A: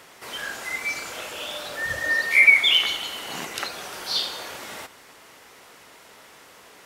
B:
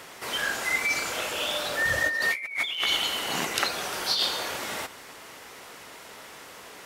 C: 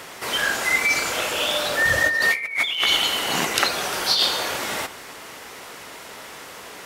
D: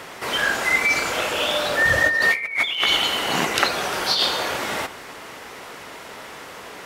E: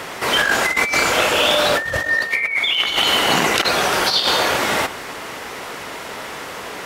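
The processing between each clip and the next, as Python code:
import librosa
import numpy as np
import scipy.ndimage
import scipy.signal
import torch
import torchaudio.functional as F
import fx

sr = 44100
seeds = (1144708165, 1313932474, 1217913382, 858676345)

y1 = fx.over_compress(x, sr, threshold_db=-27.0, ratio=-1.0)
y2 = fx.echo_filtered(y1, sr, ms=72, feedback_pct=66, hz=3100.0, wet_db=-20)
y2 = F.gain(torch.from_numpy(y2), 6.0).numpy()
y3 = fx.high_shelf(y2, sr, hz=4200.0, db=-7.5)
y3 = F.gain(torch.from_numpy(y3), 2.5).numpy()
y4 = fx.over_compress(y3, sr, threshold_db=-22.0, ratio=-0.5)
y4 = F.gain(torch.from_numpy(y4), 5.5).numpy()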